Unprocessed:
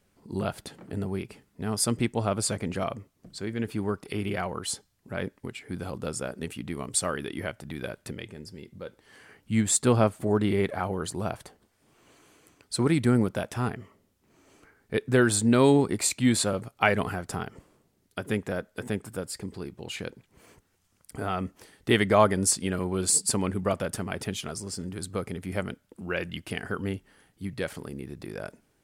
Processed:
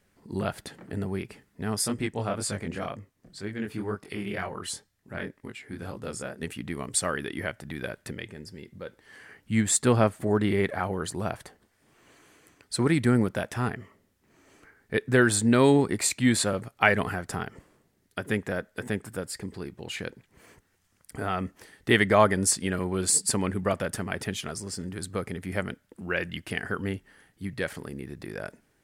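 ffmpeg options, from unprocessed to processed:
ffmpeg -i in.wav -filter_complex "[0:a]asplit=3[link_01][link_02][link_03];[link_01]afade=type=out:start_time=1.81:duration=0.02[link_04];[link_02]flanger=delay=19:depth=6.4:speed=2,afade=type=in:start_time=1.81:duration=0.02,afade=type=out:start_time=6.41:duration=0.02[link_05];[link_03]afade=type=in:start_time=6.41:duration=0.02[link_06];[link_04][link_05][link_06]amix=inputs=3:normalize=0,equalizer=frequency=1800:width=2.9:gain=6" out.wav

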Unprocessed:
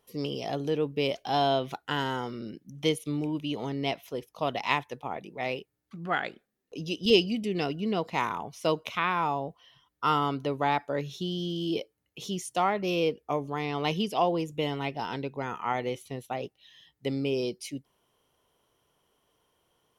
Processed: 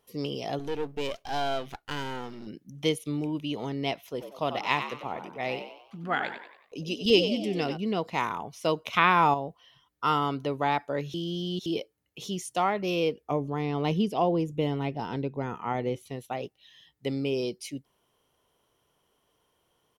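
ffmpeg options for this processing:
ffmpeg -i in.wav -filter_complex "[0:a]asettb=1/sr,asplit=3[link_01][link_02][link_03];[link_01]atrim=end=0.594[link_04];[link_02]atrim=start=0.59:end=2.47,asetpts=PTS-STARTPTS,afade=type=in:duration=0.004:curve=qsin,afade=type=out:start_time=1.876:duration=0.004:curve=qsin,aeval=exprs='if(lt(val(0),0),0.251*val(0),val(0))':channel_layout=same[link_05];[link_03]atrim=start=2.466[link_06];[link_04][link_05]acrossfade=duration=0.004:curve1=hsin:curve2=qsin[link_07];[link_07][link_06]acrossfade=duration=0.004:curve1=qsin:curve2=hsin,asplit=3[link_08][link_09][link_10];[link_08]afade=type=out:start_time=4.19:duration=0.02[link_11];[link_09]asplit=6[link_12][link_13][link_14][link_15][link_16][link_17];[link_13]adelay=94,afreqshift=74,volume=-9dB[link_18];[link_14]adelay=188,afreqshift=148,volume=-16.1dB[link_19];[link_15]adelay=282,afreqshift=222,volume=-23.3dB[link_20];[link_16]adelay=376,afreqshift=296,volume=-30.4dB[link_21];[link_17]adelay=470,afreqshift=370,volume=-37.5dB[link_22];[link_12][link_18][link_19][link_20][link_21][link_22]amix=inputs=6:normalize=0,afade=type=in:start_time=4.19:duration=0.02,afade=type=out:start_time=7.76:duration=0.02[link_23];[link_10]afade=type=in:start_time=7.76:duration=0.02[link_24];[link_11][link_23][link_24]amix=inputs=3:normalize=0,asettb=1/sr,asplit=3[link_25][link_26][link_27];[link_25]atrim=end=13.314[link_28];[link_26]atrim=start=13.31:end=16.03,asetpts=PTS-STARTPTS,afade=type=in:duration=0.004:curve=qsin,afade=type=out:start_time=2.716:duration=0.004:curve=qsin,tiltshelf=frequency=640:gain=5.5[link_29];[link_27]atrim=start=16.026[link_30];[link_28][link_29]acrossfade=duration=0.004:curve1=hsin:curve2=qsin[link_31];[link_31][link_30]acrossfade=duration=0.004:curve1=qsin:curve2=hsin,asplit=5[link_32][link_33][link_34][link_35][link_36];[link_32]atrim=end=8.932[link_37];[link_33]atrim=start=8.928:end=9.342,asetpts=PTS-STARTPTS,volume=6.5dB[link_38];[link_34]atrim=start=9.338:end=11.142[link_39];[link_35]atrim=start=11.138:end=11.662,asetpts=PTS-STARTPTS,areverse[link_40];[link_36]atrim=start=11.658[link_41];[link_37][link_38]acrossfade=duration=0.004:curve1=hsin:curve2=hsin[link_42];[link_42][link_39]acrossfade=duration=0.004:curve1=hsin:curve2=hsin[link_43];[link_43][link_40]acrossfade=duration=0.004:curve1=hsin:curve2=hsin[link_44];[link_44][link_41]acrossfade=duration=0.004:curve1=hsin:curve2=hsin" out.wav

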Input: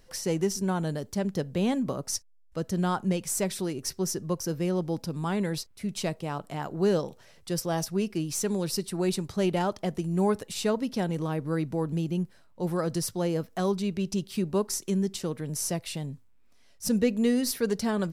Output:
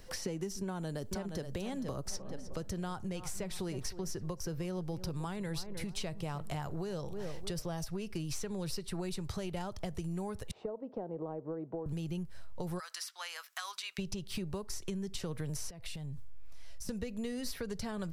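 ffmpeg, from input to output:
ffmpeg -i in.wav -filter_complex "[0:a]asplit=2[link_01][link_02];[link_02]afade=type=in:start_time=0.64:duration=0.01,afade=type=out:start_time=1.46:duration=0.01,aecho=0:1:470|940|1410|1880:0.375837|0.131543|0.0460401|0.016114[link_03];[link_01][link_03]amix=inputs=2:normalize=0,asplit=3[link_04][link_05][link_06];[link_04]afade=type=out:start_time=2.13:duration=0.02[link_07];[link_05]asplit=2[link_08][link_09];[link_09]adelay=308,lowpass=frequency=1100:poles=1,volume=-16dB,asplit=2[link_10][link_11];[link_11]adelay=308,lowpass=frequency=1100:poles=1,volume=0.43,asplit=2[link_12][link_13];[link_13]adelay=308,lowpass=frequency=1100:poles=1,volume=0.43,asplit=2[link_14][link_15];[link_15]adelay=308,lowpass=frequency=1100:poles=1,volume=0.43[link_16];[link_08][link_10][link_12][link_14][link_16]amix=inputs=5:normalize=0,afade=type=in:start_time=2.13:duration=0.02,afade=type=out:start_time=7.65:duration=0.02[link_17];[link_06]afade=type=in:start_time=7.65:duration=0.02[link_18];[link_07][link_17][link_18]amix=inputs=3:normalize=0,asettb=1/sr,asplit=3[link_19][link_20][link_21];[link_19]atrim=end=10.514[link_22];[link_20]atrim=start=10.51:end=11.86,asetpts=PTS-STARTPTS,afade=type=in:duration=0.004:curve=qsin,afade=type=out:start_time=1.346:duration=0.004:curve=qsin,asuperpass=centerf=520:order=4:qfactor=1[link_23];[link_21]atrim=start=11.856[link_24];[link_22][link_23]acrossfade=duration=0.004:curve1=hsin:curve2=qsin[link_25];[link_25][link_24]acrossfade=duration=0.004:curve1=qsin:curve2=hsin,asplit=3[link_26][link_27][link_28];[link_26]afade=type=out:start_time=12.78:duration=0.02[link_29];[link_27]highpass=frequency=1200:width=0.5412,highpass=frequency=1200:width=1.3066,afade=type=in:start_time=12.78:duration=0.02,afade=type=out:start_time=13.98:duration=0.02[link_30];[link_28]afade=type=in:start_time=13.98:duration=0.02[link_31];[link_29][link_30][link_31]amix=inputs=3:normalize=0,asettb=1/sr,asplit=3[link_32][link_33][link_34];[link_32]atrim=end=15.704[link_35];[link_33]atrim=start=15.7:end=16.89,asetpts=PTS-STARTPTS,afade=type=in:duration=0.004:curve=qsin,afade=type=out:start_time=1.186:duration=0.004:curve=qsin,acompressor=threshold=-44dB:ratio=20:attack=3.2:release=140:knee=1:detection=peak[link_36];[link_34]atrim=start=16.886[link_37];[link_35][link_36]acrossfade=duration=0.004:curve1=hsin:curve2=qsin[link_38];[link_38][link_37]acrossfade=duration=0.004:curve1=qsin:curve2=hsin,acompressor=threshold=-36dB:ratio=6,asubboost=boost=10:cutoff=79,acrossover=split=290|4300[link_39][link_40][link_41];[link_39]acompressor=threshold=-43dB:ratio=4[link_42];[link_40]acompressor=threshold=-44dB:ratio=4[link_43];[link_41]acompressor=threshold=-52dB:ratio=4[link_44];[link_42][link_43][link_44]amix=inputs=3:normalize=0,volume=5dB" out.wav

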